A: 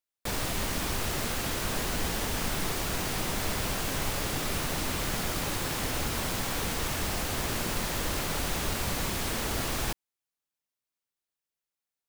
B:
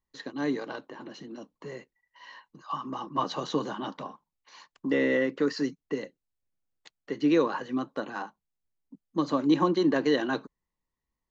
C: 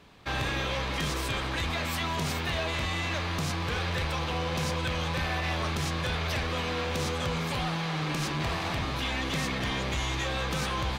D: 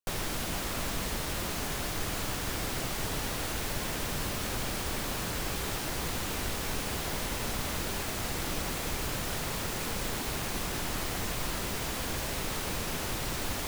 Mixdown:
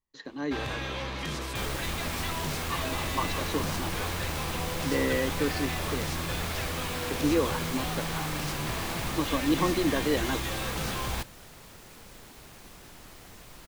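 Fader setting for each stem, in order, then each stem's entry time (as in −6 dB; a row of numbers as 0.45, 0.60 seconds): −5.0, −3.0, −4.0, −15.5 decibels; 1.30, 0.00, 0.25, 2.10 seconds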